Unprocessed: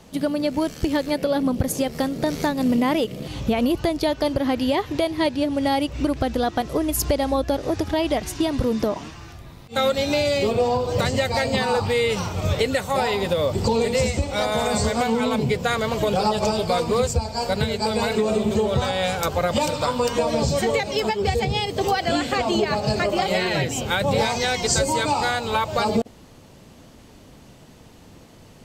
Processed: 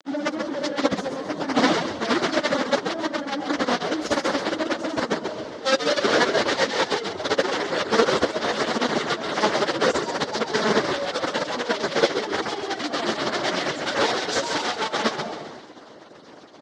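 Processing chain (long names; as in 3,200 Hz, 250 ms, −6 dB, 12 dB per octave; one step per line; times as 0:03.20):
expanding power law on the bin magnitudes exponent 1.5
four-comb reverb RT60 1.9 s, combs from 33 ms, DRR 3 dB
log-companded quantiser 2 bits
dynamic equaliser 710 Hz, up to −4 dB, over −27 dBFS, Q 1.6
reverb reduction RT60 0.67 s
on a send: echo with shifted repeats 231 ms, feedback 34%, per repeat −74 Hz, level −6.5 dB
on the sum: time stretch by phase vocoder 0.58×
loudspeaker in its box 250–5,600 Hz, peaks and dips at 310 Hz +4 dB, 600 Hz +4 dB, 2,500 Hz −8 dB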